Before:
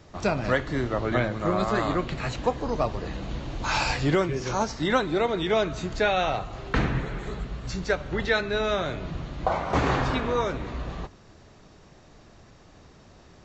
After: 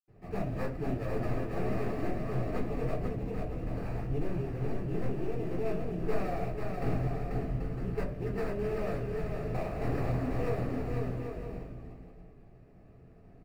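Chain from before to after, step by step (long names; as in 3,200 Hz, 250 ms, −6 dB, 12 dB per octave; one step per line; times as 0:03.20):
wavefolder on the positive side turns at −23 dBFS
0:03.05–0:05.58: parametric band 1,200 Hz −9 dB 2.1 octaves
sample-rate reduction 3,100 Hz, jitter 20%
bouncing-ball delay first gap 490 ms, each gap 0.6×, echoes 5
convolution reverb RT60 0.30 s, pre-delay 76 ms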